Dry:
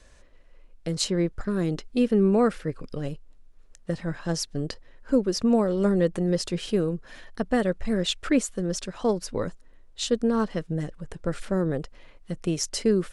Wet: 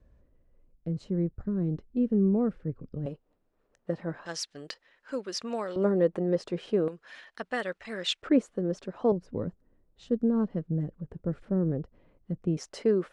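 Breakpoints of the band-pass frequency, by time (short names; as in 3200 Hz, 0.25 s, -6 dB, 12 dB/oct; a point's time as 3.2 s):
band-pass, Q 0.62
110 Hz
from 3.06 s 520 Hz
from 4.26 s 2400 Hz
from 5.76 s 570 Hz
from 6.88 s 2100 Hz
from 8.22 s 400 Hz
from 9.12 s 160 Hz
from 12.57 s 650 Hz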